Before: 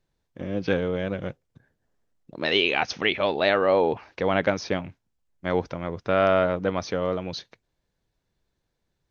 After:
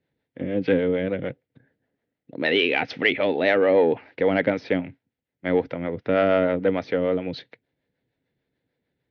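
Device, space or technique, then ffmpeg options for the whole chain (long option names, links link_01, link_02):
guitar amplifier with harmonic tremolo: -filter_complex "[0:a]acrossover=split=440[link_01][link_02];[link_01]aeval=exprs='val(0)*(1-0.5/2+0.5/2*cos(2*PI*6.7*n/s))':channel_layout=same[link_03];[link_02]aeval=exprs='val(0)*(1-0.5/2-0.5/2*cos(2*PI*6.7*n/s))':channel_layout=same[link_04];[link_03][link_04]amix=inputs=2:normalize=0,asoftclip=type=tanh:threshold=-13.5dB,highpass=100,equalizer=frequency=130:width_type=q:width=4:gain=4,equalizer=frequency=270:width_type=q:width=4:gain=9,equalizer=frequency=480:width_type=q:width=4:gain=6,equalizer=frequency=1100:width_type=q:width=4:gain=-9,equalizer=frequency=2000:width_type=q:width=4:gain=7,lowpass=frequency=3800:width=0.5412,lowpass=frequency=3800:width=1.3066,volume=2.5dB"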